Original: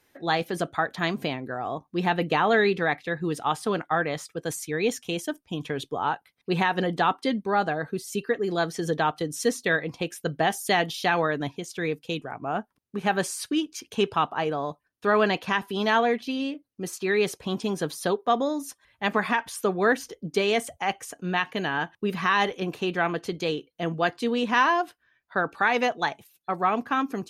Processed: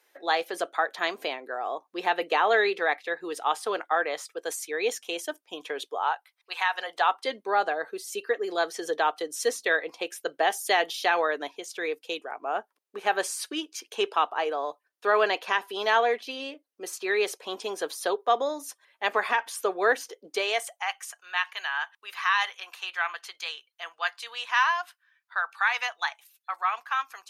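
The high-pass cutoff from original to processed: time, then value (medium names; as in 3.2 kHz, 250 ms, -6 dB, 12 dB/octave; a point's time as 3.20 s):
high-pass 24 dB/octave
5.79 s 410 Hz
6.59 s 940 Hz
7.37 s 400 Hz
20.27 s 400 Hz
20.96 s 990 Hz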